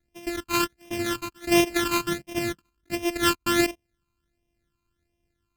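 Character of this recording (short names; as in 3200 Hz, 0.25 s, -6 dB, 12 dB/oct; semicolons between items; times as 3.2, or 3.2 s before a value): a buzz of ramps at a fixed pitch in blocks of 128 samples; phasing stages 12, 1.4 Hz, lowest notch 580–1400 Hz; AAC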